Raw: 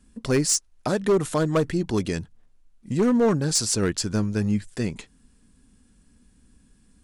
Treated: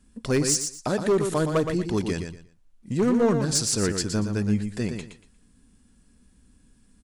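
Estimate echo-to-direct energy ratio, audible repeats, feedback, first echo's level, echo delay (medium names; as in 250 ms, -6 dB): -7.0 dB, 3, 23%, -7.0 dB, 118 ms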